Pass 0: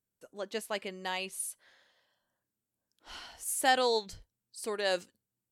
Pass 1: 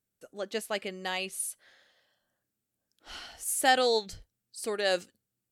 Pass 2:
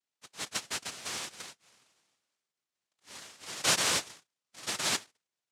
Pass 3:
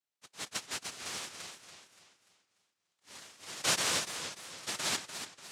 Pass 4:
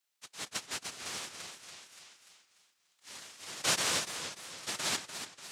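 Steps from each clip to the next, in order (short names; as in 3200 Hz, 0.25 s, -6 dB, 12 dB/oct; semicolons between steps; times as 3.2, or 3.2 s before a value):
notch 980 Hz, Q 5.6; gain +3 dB
noise vocoder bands 1; gain -3.5 dB
warbling echo 0.29 s, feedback 42%, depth 153 cents, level -9 dB; gain -3 dB
mismatched tape noise reduction encoder only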